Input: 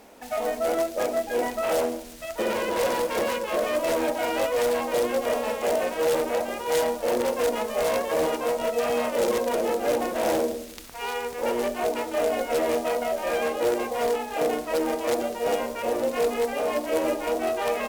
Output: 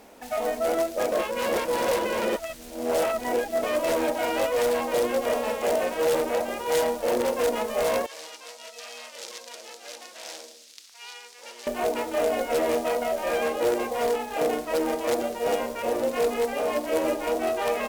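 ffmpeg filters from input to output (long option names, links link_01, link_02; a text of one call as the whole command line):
ffmpeg -i in.wav -filter_complex "[0:a]asettb=1/sr,asplit=3[link_01][link_02][link_03];[link_01]atrim=end=8.064[link_04];[link_02]atrim=start=8.06:end=11.67,asetpts=PTS-STARTPTS,afade=type=in:duration=0.004:curve=qsin,afade=type=out:start_time=3.606:duration=0.004:curve=qsin,bandpass=frequency=5000:width_type=q:width=1.3[link_05];[link_03]atrim=start=11.666[link_06];[link_04][link_05]acrossfade=duration=0.004:curve1=hsin:curve2=qsin[link_07];[link_07][link_06]acrossfade=duration=0.004:curve1=qsin:curve2=hsin,asettb=1/sr,asplit=3[link_08][link_09][link_10];[link_08]atrim=end=13.934[link_11];[link_09]atrim=start=13.93:end=17.21,asetpts=PTS-STARTPTS,afade=type=in:duration=0.004:curve=qsin,afade=type=out:start_time=3.276:duration=0.004:curve=qsin,aeval=exprs='sgn(val(0))*max(abs(val(0))-0.00211,0)':channel_layout=same[link_12];[link_10]atrim=start=17.206[link_13];[link_11][link_12]acrossfade=duration=0.004:curve1=hsin:curve2=qsin[link_14];[link_14][link_13]acrossfade=duration=0.004:curve1=qsin:curve2=hsin,asplit=3[link_15][link_16][link_17];[link_15]atrim=end=1.122[link_18];[link_16]atrim=start=1.118:end=3.632,asetpts=PTS-STARTPTS,areverse[link_19];[link_17]atrim=start=3.628[link_20];[link_18][link_19]acrossfade=duration=0.004:curve1=hsin:curve2=hsin[link_21];[link_21][link_20]acrossfade=duration=0.004:curve1=hsin:curve2=hsin" out.wav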